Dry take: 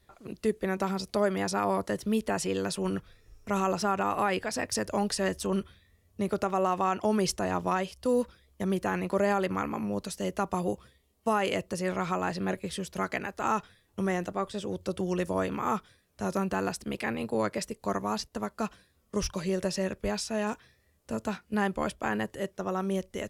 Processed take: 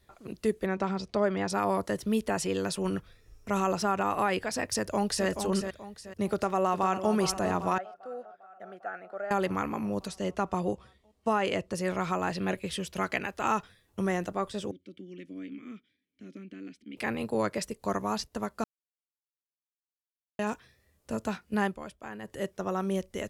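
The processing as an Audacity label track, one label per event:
0.660000	1.500000	distance through air 110 m
4.680000	5.270000	echo throw 430 ms, feedback 35%, level -7 dB
6.330000	7.110000	echo throw 400 ms, feedback 70%, level -10 dB
7.780000	9.310000	two resonant band-passes 1 kHz, apart 0.97 oct
10.080000	11.740000	distance through air 52 m
12.320000	13.540000	peaking EQ 2.8 kHz +5.5 dB 0.74 oct
14.710000	16.970000	vowel filter i
18.640000	20.390000	mute
21.650000	22.360000	dip -11.5 dB, fades 0.14 s

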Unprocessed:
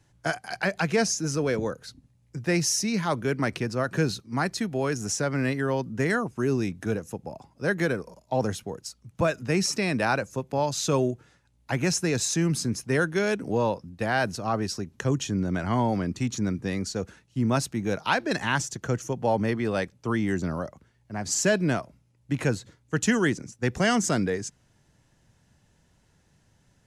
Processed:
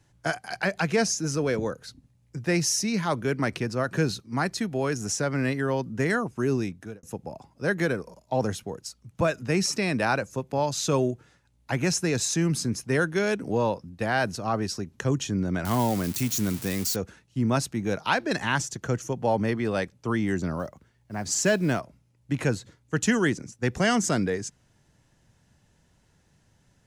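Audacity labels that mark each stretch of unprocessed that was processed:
6.560000	7.030000	fade out
15.650000	16.960000	zero-crossing glitches of -22.5 dBFS
20.590000	21.800000	short-mantissa float mantissa of 4-bit

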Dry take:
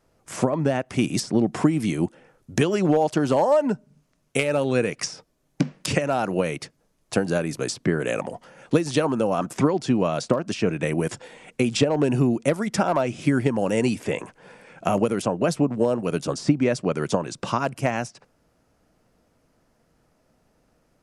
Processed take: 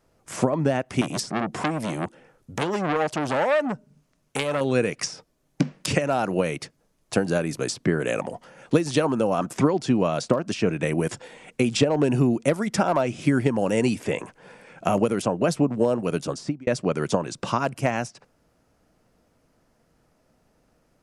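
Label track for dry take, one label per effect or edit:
1.010000	4.610000	transformer saturation saturates under 2 kHz
16.000000	16.670000	fade out equal-power

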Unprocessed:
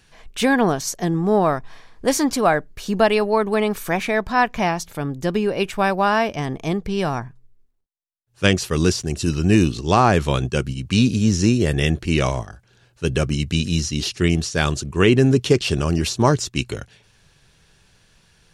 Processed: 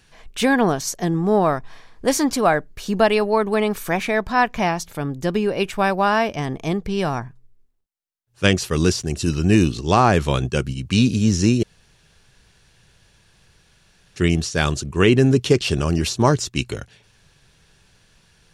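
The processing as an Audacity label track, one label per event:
11.630000	14.160000	room tone

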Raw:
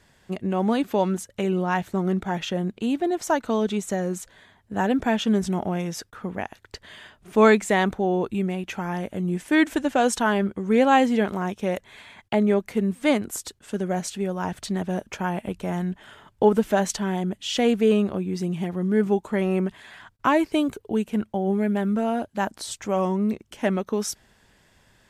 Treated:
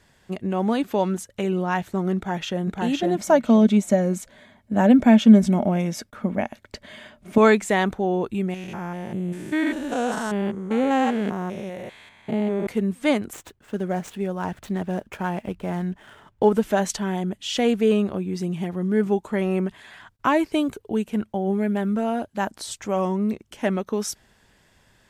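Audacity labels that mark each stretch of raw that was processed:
2.160000	2.650000	echo throw 510 ms, feedback 15%, level -1.5 dB
3.170000	7.380000	small resonant body resonances 230/590/2200 Hz, height 12 dB
8.540000	12.670000	spectrogram pixelated in time every 200 ms
13.330000	16.520000	median filter over 9 samples

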